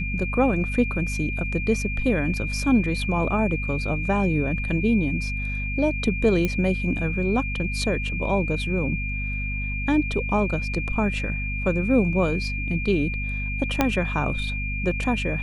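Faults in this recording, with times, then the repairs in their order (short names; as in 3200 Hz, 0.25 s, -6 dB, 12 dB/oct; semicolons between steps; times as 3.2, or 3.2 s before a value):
hum 50 Hz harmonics 5 -29 dBFS
tone 2400 Hz -30 dBFS
6.45 pop -11 dBFS
13.81 pop -5 dBFS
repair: de-click; notch 2400 Hz, Q 30; de-hum 50 Hz, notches 5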